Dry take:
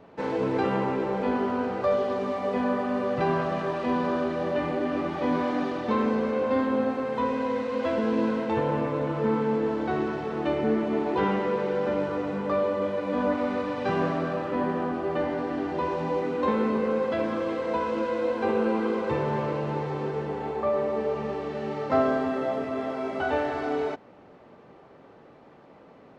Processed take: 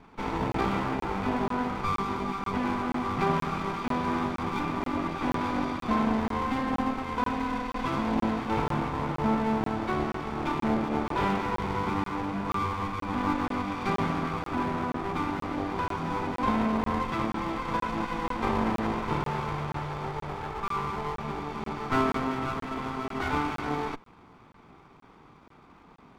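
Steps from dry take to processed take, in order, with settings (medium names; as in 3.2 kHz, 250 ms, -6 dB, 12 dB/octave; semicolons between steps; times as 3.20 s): comb filter that takes the minimum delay 0.86 ms; 19.25–21.28 s: peaking EQ 260 Hz -9 dB 0.72 oct; crackling interface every 0.48 s, samples 1024, zero, from 0.52 s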